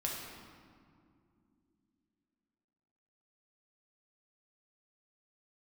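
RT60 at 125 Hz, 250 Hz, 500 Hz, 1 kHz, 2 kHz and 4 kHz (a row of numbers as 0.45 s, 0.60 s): 3.3 s, 4.0 s, 2.9 s, 2.1 s, 1.6 s, 1.3 s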